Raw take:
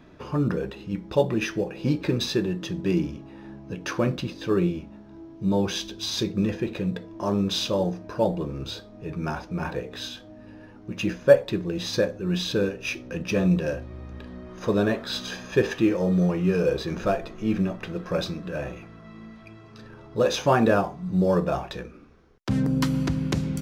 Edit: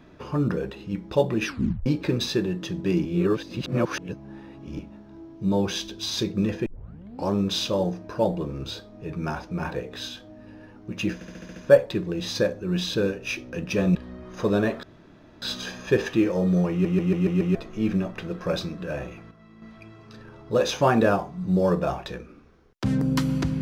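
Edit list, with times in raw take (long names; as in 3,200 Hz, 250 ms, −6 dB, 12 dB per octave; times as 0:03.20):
0:01.46: tape stop 0.40 s
0:03.05–0:04.79: reverse
0:06.66: tape start 0.65 s
0:11.14: stutter 0.07 s, 7 plays
0:13.53–0:14.19: remove
0:15.07: splice in room tone 0.59 s
0:16.36: stutter in place 0.14 s, 6 plays
0:18.96–0:19.27: clip gain −7 dB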